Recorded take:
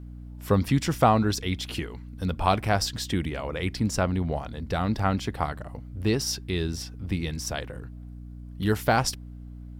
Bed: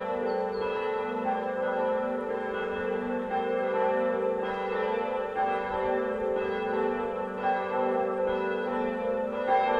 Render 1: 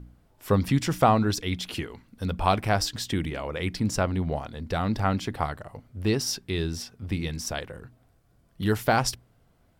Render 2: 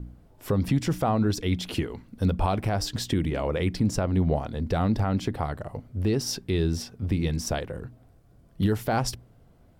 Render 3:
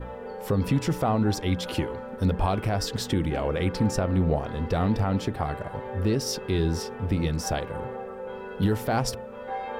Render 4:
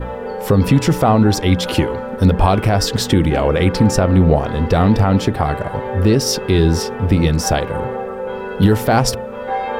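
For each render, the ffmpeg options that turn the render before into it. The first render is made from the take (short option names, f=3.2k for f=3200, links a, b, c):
-af "bandreject=f=60:t=h:w=4,bandreject=f=120:t=h:w=4,bandreject=f=180:t=h:w=4,bandreject=f=240:t=h:w=4,bandreject=f=300:t=h:w=4"
-filter_complex "[0:a]acrossover=split=750[a][b];[a]acontrast=78[c];[c][b]amix=inputs=2:normalize=0,alimiter=limit=-14.5dB:level=0:latency=1:release=205"
-filter_complex "[1:a]volume=-8.5dB[a];[0:a][a]amix=inputs=2:normalize=0"
-af "volume=11.5dB,alimiter=limit=-3dB:level=0:latency=1"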